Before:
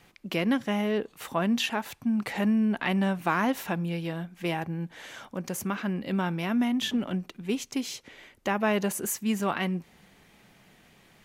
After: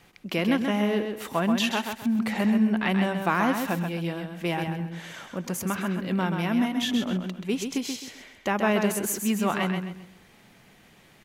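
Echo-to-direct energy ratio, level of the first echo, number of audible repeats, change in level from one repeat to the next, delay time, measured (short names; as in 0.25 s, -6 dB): -5.5 dB, -6.0 dB, 3, -10.0 dB, 0.131 s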